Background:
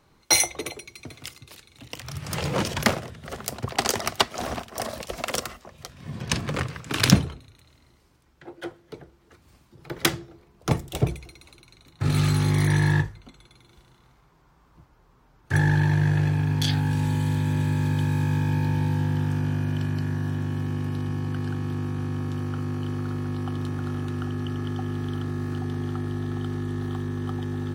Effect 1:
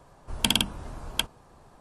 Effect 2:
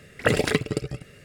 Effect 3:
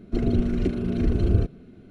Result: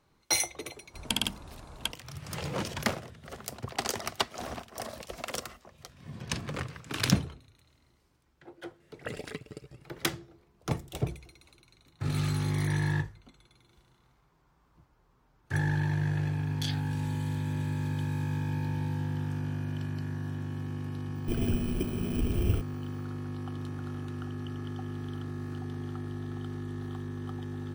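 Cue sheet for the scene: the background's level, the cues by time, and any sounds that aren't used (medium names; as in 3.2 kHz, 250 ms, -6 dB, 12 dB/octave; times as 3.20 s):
background -8 dB
0.66 s: add 1 -6.5 dB + high-pass 40 Hz
8.80 s: add 2 -17.5 dB
21.15 s: add 3 -7.5 dB + bit-reversed sample order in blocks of 16 samples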